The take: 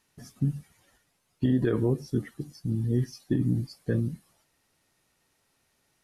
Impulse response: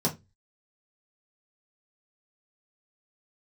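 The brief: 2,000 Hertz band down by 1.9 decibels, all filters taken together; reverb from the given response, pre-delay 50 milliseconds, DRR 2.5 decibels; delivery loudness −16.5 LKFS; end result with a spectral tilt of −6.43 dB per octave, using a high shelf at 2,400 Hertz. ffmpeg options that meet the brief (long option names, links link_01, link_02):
-filter_complex "[0:a]equalizer=frequency=2000:width_type=o:gain=-5,highshelf=frequency=2400:gain=6,asplit=2[link_01][link_02];[1:a]atrim=start_sample=2205,adelay=50[link_03];[link_02][link_03]afir=irnorm=-1:irlink=0,volume=-11.5dB[link_04];[link_01][link_04]amix=inputs=2:normalize=0,volume=6dB"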